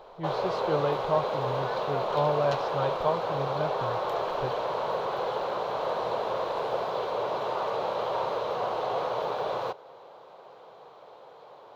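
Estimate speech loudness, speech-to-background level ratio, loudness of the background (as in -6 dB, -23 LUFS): -32.0 LUFS, -1.5 dB, -30.5 LUFS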